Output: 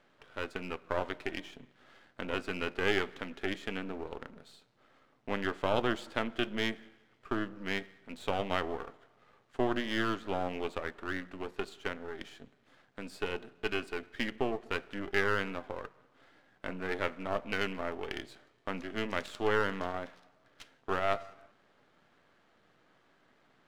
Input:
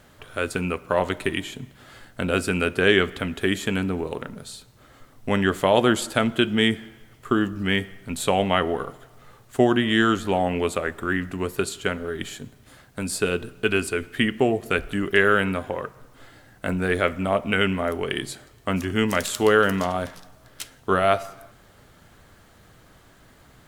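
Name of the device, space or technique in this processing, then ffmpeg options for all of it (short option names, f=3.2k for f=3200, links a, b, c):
crystal radio: -af "highpass=220,lowpass=3.5k,aeval=exprs='if(lt(val(0),0),0.251*val(0),val(0))':c=same,volume=-8dB"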